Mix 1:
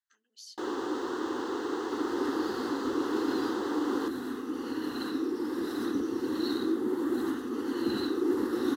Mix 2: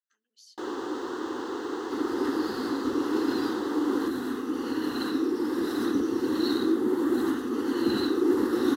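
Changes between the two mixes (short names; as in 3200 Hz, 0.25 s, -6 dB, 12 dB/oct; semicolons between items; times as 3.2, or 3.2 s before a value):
speech -6.0 dB; second sound +4.5 dB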